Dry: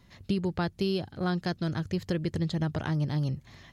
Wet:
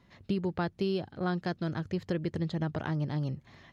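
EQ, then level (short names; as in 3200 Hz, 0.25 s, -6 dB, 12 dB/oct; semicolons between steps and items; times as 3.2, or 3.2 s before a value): LPF 2300 Hz 6 dB/oct; low shelf 110 Hz -10 dB; 0.0 dB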